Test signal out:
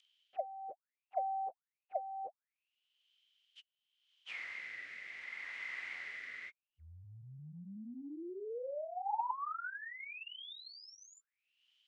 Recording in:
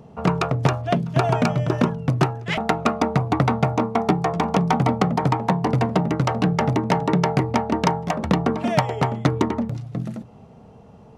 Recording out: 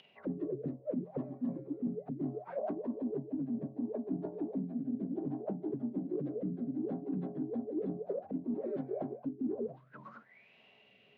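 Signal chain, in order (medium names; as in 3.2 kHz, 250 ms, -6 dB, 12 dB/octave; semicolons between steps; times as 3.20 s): frequency axis rescaled in octaves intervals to 87%; auto-wah 260–3100 Hz, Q 16, down, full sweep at -19 dBFS; rotary cabinet horn 0.65 Hz; reverse; compression 10:1, threshold -46 dBFS; reverse; low-pass 6.5 kHz; in parallel at -2.5 dB: upward compressor, threshold -54 dBFS; on the sum: trim +8 dB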